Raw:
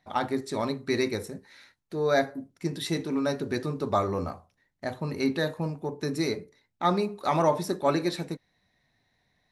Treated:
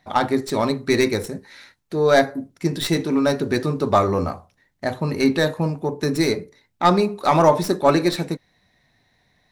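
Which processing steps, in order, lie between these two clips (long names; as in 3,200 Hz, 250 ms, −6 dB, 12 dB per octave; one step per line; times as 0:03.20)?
stylus tracing distortion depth 0.041 ms
level +8.5 dB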